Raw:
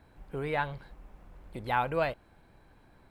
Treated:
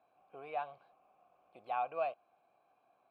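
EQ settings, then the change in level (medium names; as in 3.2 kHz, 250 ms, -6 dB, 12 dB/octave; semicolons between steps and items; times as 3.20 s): vowel filter a; high-pass 100 Hz 12 dB/octave; treble shelf 6.2 kHz +6 dB; +1.0 dB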